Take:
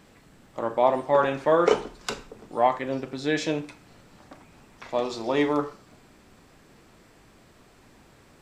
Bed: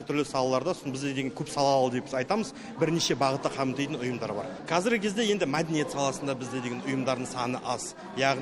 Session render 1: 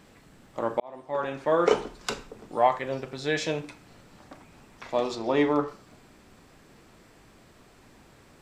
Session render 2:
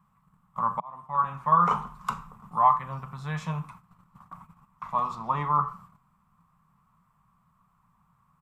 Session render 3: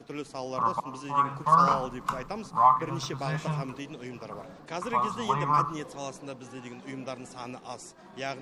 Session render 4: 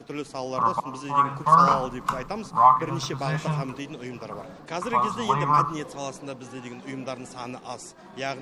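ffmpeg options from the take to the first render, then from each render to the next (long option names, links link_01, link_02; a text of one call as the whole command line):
ffmpeg -i in.wav -filter_complex "[0:a]asettb=1/sr,asplit=3[link_01][link_02][link_03];[link_01]atrim=end=2.584[link_04];[link_02]atrim=start=2.58:end=3.64,asetpts=PTS-STARTPTS,afade=type=in:duration=0.004:curve=qsin,afade=type=out:start_time=1.056:duration=0.004:curve=qsin,equalizer=frequency=280:width_type=o:width=0.51:gain=-8[link_05];[link_03]atrim=start=3.636[link_06];[link_04][link_05]acrossfade=duration=0.004:curve1=hsin:curve2=qsin[link_07];[link_07][link_06]acrossfade=duration=0.004:curve1=qsin:curve2=hsin,asettb=1/sr,asplit=3[link_08][link_09][link_10];[link_08]atrim=end=5.154[link_11];[link_09]atrim=start=5.15:end=5.68,asetpts=PTS-STARTPTS,afade=type=in:duration=0.004:curve=qsin,afade=type=out:start_time=0.526:duration=0.004:curve=qsin,aemphasis=mode=reproduction:type=cd[link_12];[link_10]atrim=start=5.676[link_13];[link_11][link_12]acrossfade=duration=0.004:curve1=hsin:curve2=qsin[link_14];[link_14][link_13]acrossfade=duration=0.004:curve1=qsin:curve2=hsin,asplit=2[link_15][link_16];[link_15]atrim=end=0.8,asetpts=PTS-STARTPTS,afade=type=out:start_time=0.796:duration=0.004:curve=hsin[link_17];[link_16]atrim=start=0.8,asetpts=PTS-STARTPTS,afade=type=in:duration=1.04[link_18];[link_17][link_18]concat=n=2:v=0:a=1" out.wav
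ffmpeg -i in.wav -af "firequalizer=gain_entry='entry(110,0);entry(170,10);entry(300,-23);entry(570,-15);entry(1100,14);entry(1600,-8);entry(2900,-11);entry(4400,-17);entry(12000,-1)':delay=0.05:min_phase=1,agate=range=-13dB:threshold=-48dB:ratio=16:detection=peak" out.wav
ffmpeg -i in.wav -i bed.wav -filter_complex "[1:a]volume=-9.5dB[link_01];[0:a][link_01]amix=inputs=2:normalize=0" out.wav
ffmpeg -i in.wav -af "volume=4dB" out.wav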